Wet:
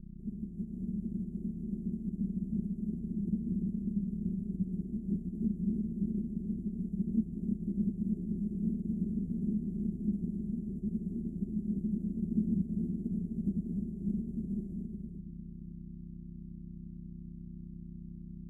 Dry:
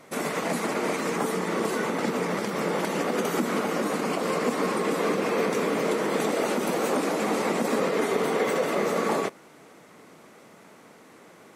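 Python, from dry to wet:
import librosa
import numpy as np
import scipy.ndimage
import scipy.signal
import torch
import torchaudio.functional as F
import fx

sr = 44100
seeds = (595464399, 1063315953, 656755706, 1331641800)

p1 = np.r_[np.sort(x[:len(x) // 64 * 64].reshape(-1, 64), axis=1).ravel(), x[len(x) // 64 * 64:]]
p2 = fx.peak_eq(p1, sr, hz=300.0, db=8.5, octaves=3.0)
p3 = fx.dmg_buzz(p2, sr, base_hz=50.0, harmonics=6, level_db=-34.0, tilt_db=0, odd_only=False)
p4 = scipy.signal.sosfilt(scipy.signal.cheby2(4, 70, [820.0, 4700.0], 'bandstop', fs=sr, output='sos'), p3)
p5 = fx.stretch_grains(p4, sr, factor=1.6, grain_ms=26.0)
p6 = scipy.signal.sosfilt(scipy.signal.butter(4, 6200.0, 'lowpass', fs=sr, output='sos'), p5)
p7 = p6 + fx.echo_multitap(p6, sr, ms=(340, 897), db=(-4.0, -16.0), dry=0)
p8 = fx.upward_expand(p7, sr, threshold_db=-34.0, expansion=1.5)
y = F.gain(torch.from_numpy(p8), -3.0).numpy()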